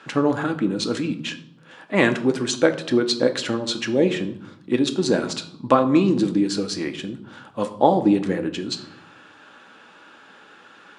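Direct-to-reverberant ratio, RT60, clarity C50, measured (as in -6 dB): 6.5 dB, 0.70 s, 13.0 dB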